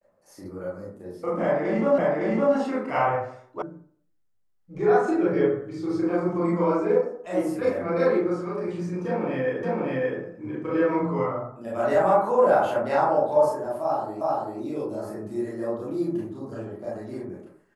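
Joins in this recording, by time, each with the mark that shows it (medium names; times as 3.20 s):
1.98 s: repeat of the last 0.56 s
3.62 s: sound stops dead
9.63 s: repeat of the last 0.57 s
14.21 s: repeat of the last 0.39 s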